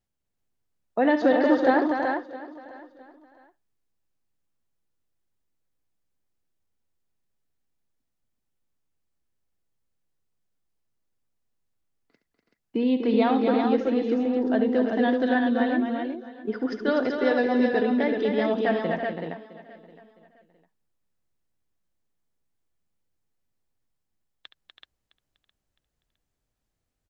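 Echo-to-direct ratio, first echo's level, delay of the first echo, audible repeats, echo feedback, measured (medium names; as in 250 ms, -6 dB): -1.0 dB, -12.0 dB, 70 ms, 11, no regular repeats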